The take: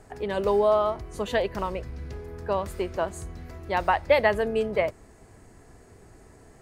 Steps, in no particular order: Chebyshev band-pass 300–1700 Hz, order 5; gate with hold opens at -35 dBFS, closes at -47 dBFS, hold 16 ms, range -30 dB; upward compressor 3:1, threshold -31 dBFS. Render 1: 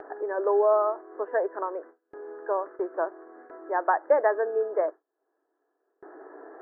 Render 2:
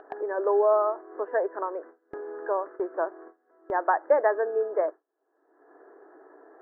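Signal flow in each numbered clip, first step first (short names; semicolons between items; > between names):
upward compressor > Chebyshev band-pass > gate with hold; Chebyshev band-pass > gate with hold > upward compressor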